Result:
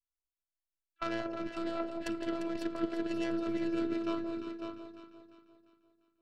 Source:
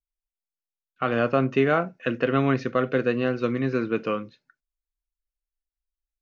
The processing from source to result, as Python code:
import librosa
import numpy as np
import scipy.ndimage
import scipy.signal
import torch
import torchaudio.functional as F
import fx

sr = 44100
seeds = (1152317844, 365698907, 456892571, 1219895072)

p1 = fx.tracing_dist(x, sr, depth_ms=0.15)
p2 = fx.over_compress(p1, sr, threshold_db=-24.0, ratio=-0.5)
p3 = fx.echo_alternate(p2, sr, ms=174, hz=1000.0, feedback_pct=65, wet_db=-5.5)
p4 = fx.robotise(p3, sr, hz=335.0)
p5 = p4 + fx.echo_single(p4, sr, ms=551, db=-7.0, dry=0)
y = F.gain(torch.from_numpy(p5), -9.0).numpy()